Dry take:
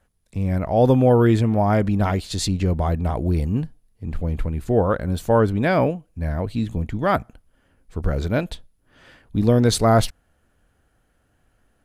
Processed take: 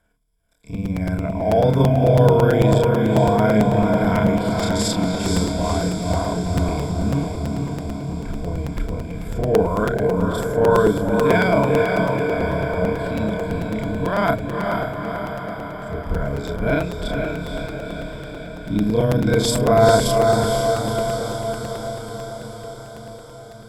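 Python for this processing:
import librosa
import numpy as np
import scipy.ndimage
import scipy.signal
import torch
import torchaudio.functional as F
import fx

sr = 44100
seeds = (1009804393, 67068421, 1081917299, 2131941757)

p1 = fx.stretch_grains(x, sr, factor=2.0, grain_ms=113.0)
p2 = fx.ripple_eq(p1, sr, per_octave=1.7, db=13)
p3 = p2 + fx.echo_diffused(p2, sr, ms=489, feedback_pct=67, wet_db=-3, dry=0)
p4 = fx.buffer_crackle(p3, sr, first_s=0.52, period_s=0.11, block=256, kind='repeat')
y = p4 * 10.0 ** (-1.0 / 20.0)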